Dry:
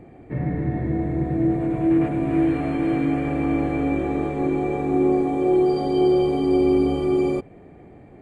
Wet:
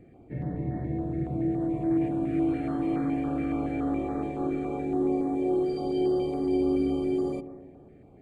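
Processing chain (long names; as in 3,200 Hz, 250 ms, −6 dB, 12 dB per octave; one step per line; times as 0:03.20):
0:02.48–0:04.85: parametric band 1,300 Hz +8 dB 0.53 octaves
bucket-brigade delay 127 ms, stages 1,024, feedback 55%, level −11 dB
notch on a step sequencer 7.1 Hz 960–2,800 Hz
level −7.5 dB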